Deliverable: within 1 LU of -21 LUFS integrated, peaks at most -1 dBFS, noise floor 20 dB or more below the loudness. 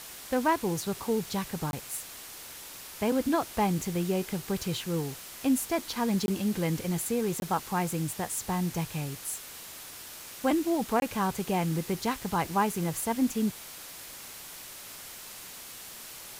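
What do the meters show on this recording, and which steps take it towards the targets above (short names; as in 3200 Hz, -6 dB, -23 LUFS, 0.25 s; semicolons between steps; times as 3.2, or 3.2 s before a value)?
dropouts 4; longest dropout 21 ms; noise floor -45 dBFS; noise floor target -50 dBFS; loudness -30.0 LUFS; peak -14.5 dBFS; loudness target -21.0 LUFS
-> interpolate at 1.71/6.26/7.4/11, 21 ms; noise print and reduce 6 dB; gain +9 dB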